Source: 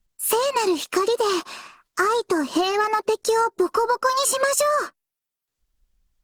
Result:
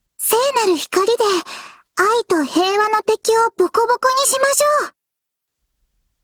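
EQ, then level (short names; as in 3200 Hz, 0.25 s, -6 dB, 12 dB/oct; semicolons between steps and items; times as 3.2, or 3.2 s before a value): HPF 45 Hz; +5.5 dB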